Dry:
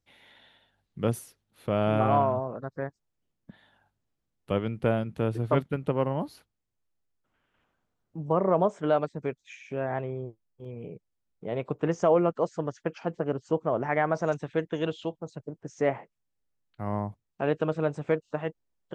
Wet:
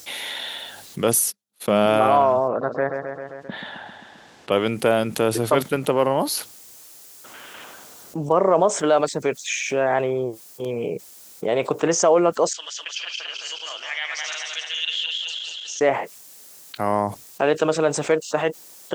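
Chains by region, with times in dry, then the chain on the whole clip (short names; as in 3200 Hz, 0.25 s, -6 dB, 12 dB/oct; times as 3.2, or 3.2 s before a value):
1.14–1.86 gate -54 dBFS, range -56 dB + bell 200 Hz +10 dB 0.32 oct
2.48–4.52 LPF 2800 Hz + feedback echo 0.132 s, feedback 50%, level -12 dB
12.53–15.81 regenerating reverse delay 0.106 s, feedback 67%, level -2.5 dB + ladder band-pass 3400 Hz, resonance 65%
whole clip: HPF 100 Hz; tone controls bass -13 dB, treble +14 dB; fast leveller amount 50%; gain +6 dB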